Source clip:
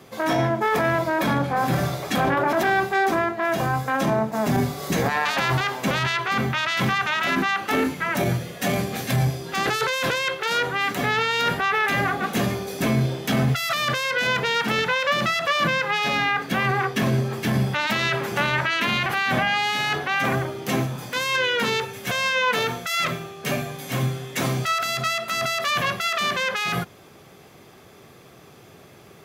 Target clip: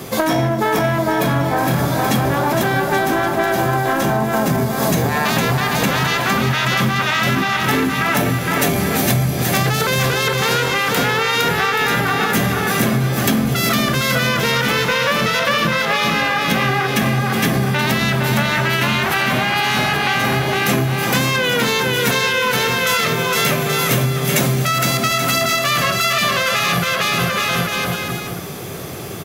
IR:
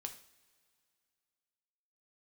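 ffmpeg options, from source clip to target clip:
-filter_complex "[0:a]lowshelf=f=420:g=4.5,acontrast=87,asplit=2[a][b];[b]aecho=0:1:460|828|1122|1358|1546:0.631|0.398|0.251|0.158|0.1[c];[a][c]amix=inputs=2:normalize=0,acompressor=threshold=-21dB:ratio=10,highshelf=f=5.7k:g=6,aecho=1:1:245:0.0944,asplit=2[d][e];[1:a]atrim=start_sample=2205,highshelf=f=5.4k:g=12[f];[e][f]afir=irnorm=-1:irlink=0,volume=-8dB[g];[d][g]amix=inputs=2:normalize=0,volume=4.5dB"

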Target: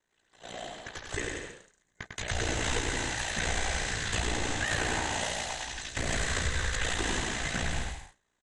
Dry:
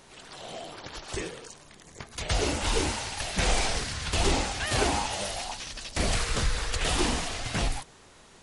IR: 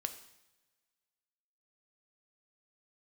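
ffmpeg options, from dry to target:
-af "agate=range=-25dB:threshold=-41dB:ratio=16:detection=peak,aeval=exprs='val(0)*sin(2*PI*29*n/s)':c=same,superequalizer=11b=2.24:14b=0.501:16b=0.251,aecho=1:1:100|175|231.2|273.4|305.1:0.631|0.398|0.251|0.158|0.1,alimiter=limit=-19dB:level=0:latency=1:release=253,highshelf=f=6.5k:g=6.5"

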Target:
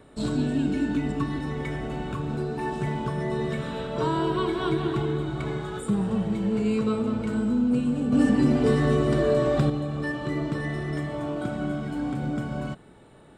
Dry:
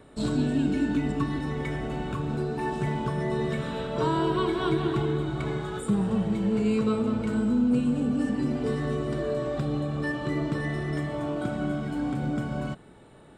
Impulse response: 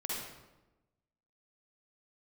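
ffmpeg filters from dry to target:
-filter_complex "[0:a]asettb=1/sr,asplit=3[a][b][c];[a]atrim=end=8.124[d];[b]atrim=start=8.12:end=9.7,asetpts=PTS-STARTPTS,afade=t=in:d=0.004:c=qsin,afade=t=out:st=1.576:d=0.004:c=qsin,acontrast=79[e];[c]atrim=start=9.696[f];[d][e]acrossfade=d=0.004:c1=hsin:c2=qsin[g];[g][f]acrossfade=d=0.004:c1=qsin:c2=hsin"

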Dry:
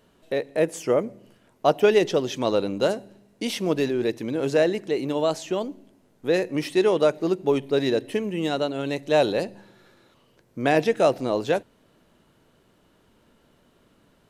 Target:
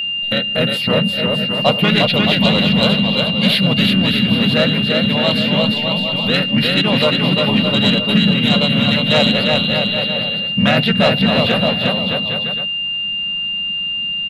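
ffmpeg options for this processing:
-filter_complex "[0:a]aecho=1:1:350|612.5|809.4|957|1068:0.631|0.398|0.251|0.158|0.1,asplit=2[a][b];[b]acompressor=threshold=-32dB:ratio=6,volume=1dB[c];[a][c]amix=inputs=2:normalize=0,asplit=3[d][e][f];[e]asetrate=33038,aresample=44100,atempo=1.33484,volume=-3dB[g];[f]asetrate=37084,aresample=44100,atempo=1.18921,volume=-4dB[h];[d][g][h]amix=inputs=3:normalize=0,firequalizer=gain_entry='entry(100,0);entry(200,8);entry(340,-20);entry(550,-4);entry(1100,-2);entry(2100,1);entry(4000,11);entry(6000,-23);entry(11000,0)':delay=0.05:min_phase=1,acontrast=59,aeval=exprs='val(0)+0.141*sin(2*PI*2800*n/s)':c=same,volume=-1.5dB"

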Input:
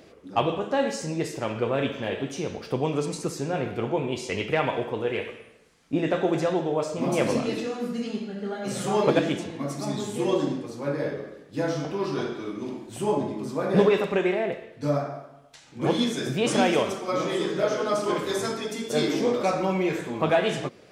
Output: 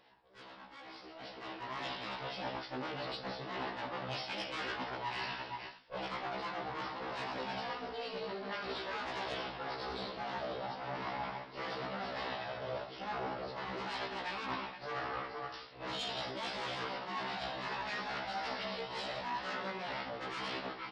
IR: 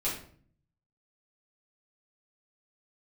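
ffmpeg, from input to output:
-af "afftfilt=real='re*pow(10,10/40*sin(2*PI*(1.4*log(max(b,1)*sr/1024/100)/log(2)-(-0.57)*(pts-256)/sr)))':imag='im*pow(10,10/40*sin(2*PI*(1.4*log(max(b,1)*sr/1024/100)/log(2)-(-0.57)*(pts-256)/sr)))':win_size=1024:overlap=0.75,aresample=11025,aeval=exprs='abs(val(0))':c=same,aresample=44100,bandreject=f=2.4k:w=30,aecho=1:1:474:0.106,asoftclip=type=tanh:threshold=-19dB,flanger=delay=8:depth=7.3:regen=-72:speed=0.47:shape=triangular,areverse,acompressor=threshold=-40dB:ratio=16,areverse,highpass=f=330:p=1,dynaudnorm=f=980:g=3:m=16dB,afftfilt=real='re*1.73*eq(mod(b,3),0)':imag='im*1.73*eq(mod(b,3),0)':win_size=2048:overlap=0.75,volume=-2.5dB"

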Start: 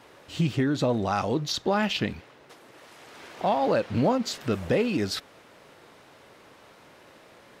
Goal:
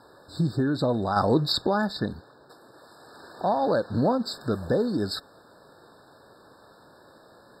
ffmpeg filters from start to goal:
-filter_complex "[0:a]asettb=1/sr,asplit=3[a][b][c];[a]atrim=end=1.164[d];[b]atrim=start=1.16:end=1.67,asetpts=PTS-STARTPTS,afade=t=in:d=0.004:c=qsin,afade=t=out:st=0.506:d=0.004:c=qsin,acontrast=35[e];[c]atrim=start=1.666[f];[d][e]acrossfade=d=0.004:c1=hsin:c2=qsin[g];[g][f]acrossfade=d=0.004:c1=qsin:c2=hsin,afftfilt=real='re*eq(mod(floor(b*sr/1024/1800),2),0)':imag='im*eq(mod(floor(b*sr/1024/1800),2),0)':win_size=1024:overlap=0.75"

